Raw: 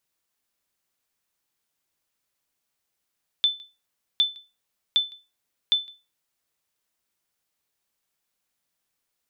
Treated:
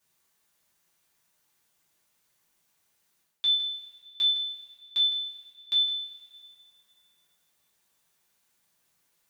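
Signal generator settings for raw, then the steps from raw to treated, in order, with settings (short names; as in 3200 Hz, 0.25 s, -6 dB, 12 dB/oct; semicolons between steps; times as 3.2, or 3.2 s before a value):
sonar ping 3520 Hz, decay 0.27 s, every 0.76 s, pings 4, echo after 0.16 s, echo -25.5 dB -12.5 dBFS
reverse; compressor 5:1, threshold -32 dBFS; reverse; two-slope reverb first 0.3 s, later 2.4 s, from -18 dB, DRR -7 dB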